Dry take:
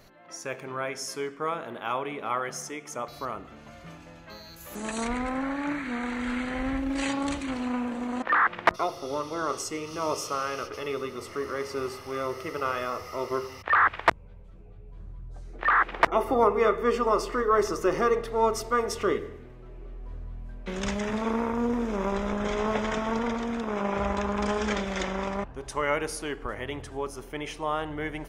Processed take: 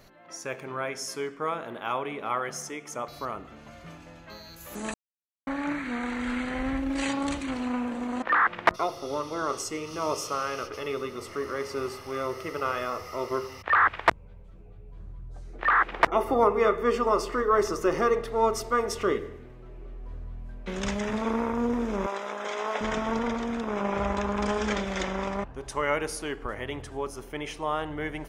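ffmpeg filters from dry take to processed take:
-filter_complex "[0:a]asettb=1/sr,asplit=3[a][b][c];[a]atrim=end=22.064[d];[b]atrim=start=22.06:end=22.81,asetpts=PTS-STARTPTS,afade=t=in:d=0.004:c=qsin,afade=t=out:st=0.746:d=0.004:c=qsin,highpass=540[e];[c]atrim=start=22.806[f];[d][e]acrossfade=d=0.004:c1=hsin:c2=qsin[g];[g][f]acrossfade=d=0.004:c1=qsin:c2=hsin,asplit=3[h][i][j];[h]atrim=end=4.94,asetpts=PTS-STARTPTS,afade=t=out:st=4.936:d=0.004:c=hsin[k];[i]atrim=start=4.94:end=5.47,asetpts=PTS-STARTPTS,volume=0[l];[j]atrim=start=5.47,asetpts=PTS-STARTPTS,afade=t=in:d=0.004:c=hsin[m];[k][l][m]concat=n=3:v=0:a=1"

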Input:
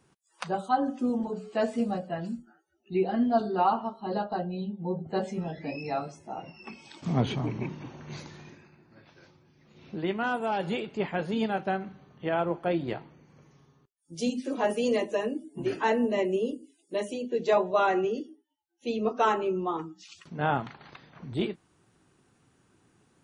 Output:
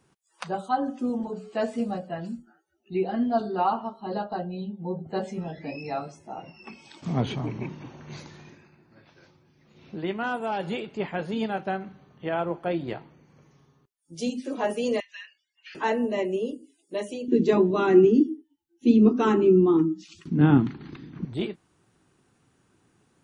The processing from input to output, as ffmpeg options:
-filter_complex "[0:a]asettb=1/sr,asplit=3[a][b][c];[a]atrim=end=15.004[d];[b]atrim=start=15:end=15.75,asetpts=PTS-STARTPTS,afade=t=in:d=0.004:c=qsin,afade=t=out:st=0.746:d=0.004:c=qsin,asuperpass=centerf=3000:order=8:qfactor=0.79[e];[c]atrim=start=15.746[f];[d][e]acrossfade=d=0.004:c1=hsin:c2=qsin[g];[g][f]acrossfade=d=0.004:c1=qsin:c2=hsin,asettb=1/sr,asplit=3[h][i][j];[h]atrim=end=17.284[k];[i]atrim=start=17.28:end=21.25,asetpts=PTS-STARTPTS,afade=t=in:d=0.004:c=qsin,afade=t=out:st=3.966:d=0.004:c=qsin,lowshelf=f=430:t=q:w=3:g=11.5[l];[j]atrim=start=21.246[m];[k][l]acrossfade=d=0.004:c1=hsin:c2=qsin[n];[n][m]acrossfade=d=0.004:c1=qsin:c2=hsin"

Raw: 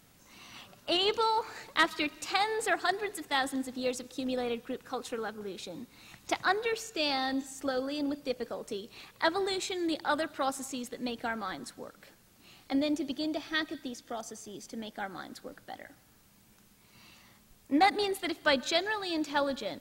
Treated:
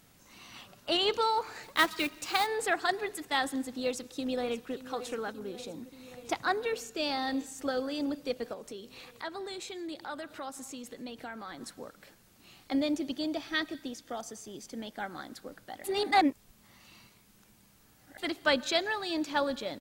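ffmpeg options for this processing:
-filter_complex "[0:a]asettb=1/sr,asplit=3[a][b][c];[a]atrim=end=1.634[d];[b]atrim=start=1.63:end=2.47,asetpts=PTS-STARTPTS,afade=t=in:d=0.004:c=qsin,afade=t=out:st=0.836:d=0.004:c=qsin,acrusher=bits=3:mode=log:mix=0:aa=0.000001[e];[c]atrim=start=2.466[f];[d][e]acrossfade=d=0.004:c1=hsin:c2=qsin[g];[g][f]acrossfade=d=0.004:c1=qsin:c2=hsin,asplit=2[h][i];[i]afade=t=in:st=3.84:d=0.01,afade=t=out:st=4.73:d=0.01,aecho=0:1:580|1160|1740|2320|2900|3480|4060|4640|5220|5800|6380|6960:0.199526|0.159621|0.127697|0.102157|0.0817259|0.0653808|0.0523046|0.0418437|0.0334749|0.02678|0.021424|0.0171392[j];[h][j]amix=inputs=2:normalize=0,asettb=1/sr,asplit=3[k][l][m];[k]atrim=end=5.324[n];[l]atrim=start=5.32:end=7.27,asetpts=PTS-STARTPTS,afade=t=in:d=0.004:c=qsin,afade=t=out:st=1.946:d=0.004:c=qsin,equalizer=f=2.9k:t=o:w=2.7:g=-3.5[o];[m]atrim=start=7.266[p];[n][o]acrossfade=d=0.004:c1=hsin:c2=qsin[q];[q][p]acrossfade=d=0.004:c1=qsin:c2=hsin,asettb=1/sr,asplit=3[r][s][t];[r]atrim=end=8.534[u];[s]atrim=start=8.53:end=11.61,asetpts=PTS-STARTPTS,afade=t=in:d=0.004:c=qsin,afade=t=out:st=3.076:d=0.004:c=qsin,acompressor=threshold=-43dB:ratio=2:attack=3.2:release=140:knee=1:detection=peak[v];[t]atrim=start=11.606[w];[u][v]acrossfade=d=0.004:c1=hsin:c2=qsin[x];[x][w]acrossfade=d=0.004:c1=qsin:c2=hsin,asplit=3[y][z][aa];[y]atrim=end=15.842[ab];[z]atrim=start=15.838:end=18.182,asetpts=PTS-STARTPTS,areverse[ac];[aa]atrim=start=18.178[ad];[ab][ac]acrossfade=d=0.004:c1=hsin:c2=hsin[ae];[ae][ad]acrossfade=d=0.004:c1=hsin:c2=hsin"

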